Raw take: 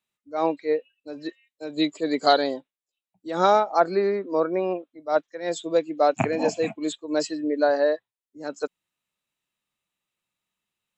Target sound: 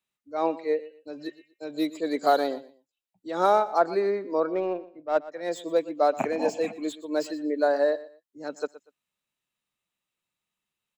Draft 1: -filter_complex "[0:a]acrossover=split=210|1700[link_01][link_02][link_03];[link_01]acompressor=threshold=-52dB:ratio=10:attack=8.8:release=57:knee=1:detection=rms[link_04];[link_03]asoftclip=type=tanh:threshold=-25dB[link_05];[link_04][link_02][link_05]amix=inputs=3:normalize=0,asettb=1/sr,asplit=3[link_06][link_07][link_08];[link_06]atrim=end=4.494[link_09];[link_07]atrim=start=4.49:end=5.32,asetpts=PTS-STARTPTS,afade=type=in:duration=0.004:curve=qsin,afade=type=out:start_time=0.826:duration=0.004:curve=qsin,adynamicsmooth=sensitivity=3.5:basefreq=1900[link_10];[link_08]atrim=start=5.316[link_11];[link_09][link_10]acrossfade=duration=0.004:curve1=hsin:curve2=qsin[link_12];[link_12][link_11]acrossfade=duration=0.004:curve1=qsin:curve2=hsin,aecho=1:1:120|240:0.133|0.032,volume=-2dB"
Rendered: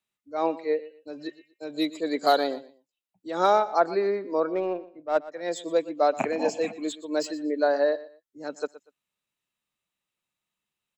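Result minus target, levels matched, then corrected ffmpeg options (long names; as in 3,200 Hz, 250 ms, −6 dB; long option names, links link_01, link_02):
soft clipping: distortion −8 dB
-filter_complex "[0:a]acrossover=split=210|1700[link_01][link_02][link_03];[link_01]acompressor=threshold=-52dB:ratio=10:attack=8.8:release=57:knee=1:detection=rms[link_04];[link_03]asoftclip=type=tanh:threshold=-36dB[link_05];[link_04][link_02][link_05]amix=inputs=3:normalize=0,asettb=1/sr,asplit=3[link_06][link_07][link_08];[link_06]atrim=end=4.494[link_09];[link_07]atrim=start=4.49:end=5.32,asetpts=PTS-STARTPTS,afade=type=in:duration=0.004:curve=qsin,afade=type=out:start_time=0.826:duration=0.004:curve=qsin,adynamicsmooth=sensitivity=3.5:basefreq=1900[link_10];[link_08]atrim=start=5.316[link_11];[link_09][link_10]acrossfade=duration=0.004:curve1=hsin:curve2=qsin[link_12];[link_12][link_11]acrossfade=duration=0.004:curve1=qsin:curve2=hsin,aecho=1:1:120|240:0.133|0.032,volume=-2dB"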